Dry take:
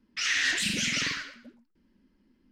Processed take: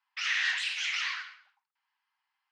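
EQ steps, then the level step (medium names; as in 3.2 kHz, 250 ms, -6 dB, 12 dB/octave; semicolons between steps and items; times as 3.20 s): rippled Chebyshev high-pass 770 Hz, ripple 3 dB; tape spacing loss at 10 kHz 20 dB; +4.0 dB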